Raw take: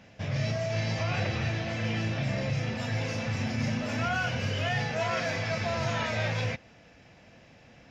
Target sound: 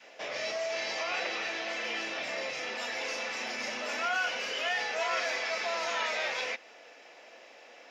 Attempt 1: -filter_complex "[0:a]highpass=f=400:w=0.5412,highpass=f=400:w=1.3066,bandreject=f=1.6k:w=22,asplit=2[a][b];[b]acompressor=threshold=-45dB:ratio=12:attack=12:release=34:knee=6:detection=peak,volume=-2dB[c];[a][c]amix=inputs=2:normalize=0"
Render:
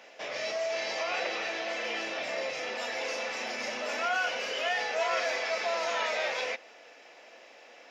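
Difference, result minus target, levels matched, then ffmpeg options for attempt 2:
500 Hz band +2.5 dB
-filter_complex "[0:a]highpass=f=400:w=0.5412,highpass=f=400:w=1.3066,adynamicequalizer=threshold=0.00447:dfrequency=570:dqfactor=1.3:tfrequency=570:tqfactor=1.3:attack=5:release=100:ratio=0.3:range=2.5:mode=cutabove:tftype=bell,bandreject=f=1.6k:w=22,asplit=2[a][b];[b]acompressor=threshold=-45dB:ratio=12:attack=12:release=34:knee=6:detection=peak,volume=-2dB[c];[a][c]amix=inputs=2:normalize=0"

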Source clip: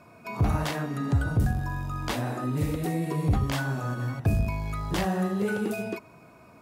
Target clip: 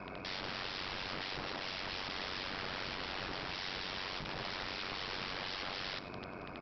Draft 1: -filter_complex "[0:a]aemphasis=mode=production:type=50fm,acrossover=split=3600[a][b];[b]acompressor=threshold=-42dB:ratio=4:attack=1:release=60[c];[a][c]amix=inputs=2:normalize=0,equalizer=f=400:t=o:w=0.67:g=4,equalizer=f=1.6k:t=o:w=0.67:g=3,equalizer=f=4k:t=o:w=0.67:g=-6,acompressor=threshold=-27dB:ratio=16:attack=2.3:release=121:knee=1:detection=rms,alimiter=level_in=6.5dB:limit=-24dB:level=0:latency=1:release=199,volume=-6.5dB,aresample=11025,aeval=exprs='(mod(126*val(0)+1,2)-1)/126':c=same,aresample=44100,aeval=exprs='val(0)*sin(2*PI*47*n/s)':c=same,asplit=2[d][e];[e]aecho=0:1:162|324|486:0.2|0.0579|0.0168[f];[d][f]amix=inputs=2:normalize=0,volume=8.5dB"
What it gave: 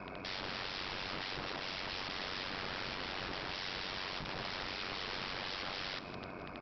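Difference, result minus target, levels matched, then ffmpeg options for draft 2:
echo 65 ms late
-filter_complex "[0:a]aemphasis=mode=production:type=50fm,acrossover=split=3600[a][b];[b]acompressor=threshold=-42dB:ratio=4:attack=1:release=60[c];[a][c]amix=inputs=2:normalize=0,equalizer=f=400:t=o:w=0.67:g=4,equalizer=f=1.6k:t=o:w=0.67:g=3,equalizer=f=4k:t=o:w=0.67:g=-6,acompressor=threshold=-27dB:ratio=16:attack=2.3:release=121:knee=1:detection=rms,alimiter=level_in=6.5dB:limit=-24dB:level=0:latency=1:release=199,volume=-6.5dB,aresample=11025,aeval=exprs='(mod(126*val(0)+1,2)-1)/126':c=same,aresample=44100,aeval=exprs='val(0)*sin(2*PI*47*n/s)':c=same,asplit=2[d][e];[e]aecho=0:1:97|194|291:0.2|0.0579|0.0168[f];[d][f]amix=inputs=2:normalize=0,volume=8.5dB"

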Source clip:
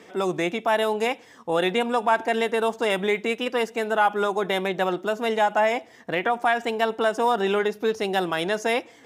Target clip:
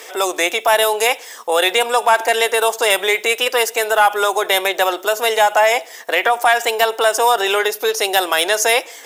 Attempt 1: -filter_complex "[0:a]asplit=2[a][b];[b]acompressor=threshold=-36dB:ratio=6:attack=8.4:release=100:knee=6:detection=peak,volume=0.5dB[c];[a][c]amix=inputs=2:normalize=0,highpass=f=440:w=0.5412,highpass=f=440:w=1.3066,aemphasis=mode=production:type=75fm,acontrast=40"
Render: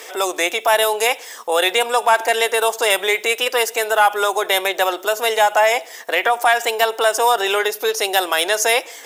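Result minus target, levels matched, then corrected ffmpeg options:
compressor: peak gain reduction +7 dB
-filter_complex "[0:a]asplit=2[a][b];[b]acompressor=threshold=-27.5dB:ratio=6:attack=8.4:release=100:knee=6:detection=peak,volume=0.5dB[c];[a][c]amix=inputs=2:normalize=0,highpass=f=440:w=0.5412,highpass=f=440:w=1.3066,aemphasis=mode=production:type=75fm,acontrast=40"

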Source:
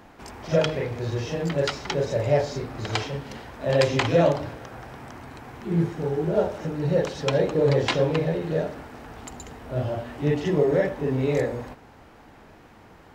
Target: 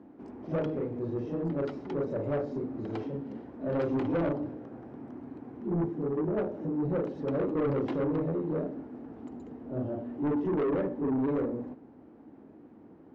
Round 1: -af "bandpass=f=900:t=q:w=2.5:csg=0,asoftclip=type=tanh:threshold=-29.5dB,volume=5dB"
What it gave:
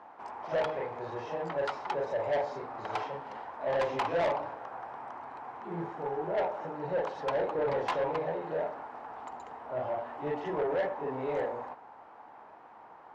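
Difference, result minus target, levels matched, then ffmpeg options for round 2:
1000 Hz band +11.0 dB
-af "bandpass=f=280:t=q:w=2.5:csg=0,asoftclip=type=tanh:threshold=-29.5dB,volume=5dB"

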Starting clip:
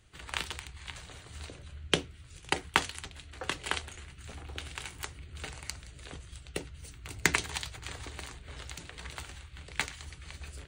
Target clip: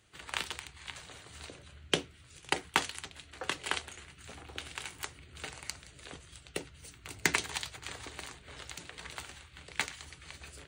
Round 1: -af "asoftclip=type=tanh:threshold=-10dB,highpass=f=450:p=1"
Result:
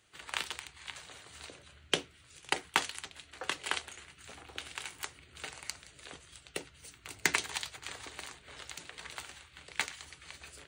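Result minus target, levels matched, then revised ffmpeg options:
250 Hz band -3.5 dB
-af "asoftclip=type=tanh:threshold=-10dB,highpass=f=190:p=1"

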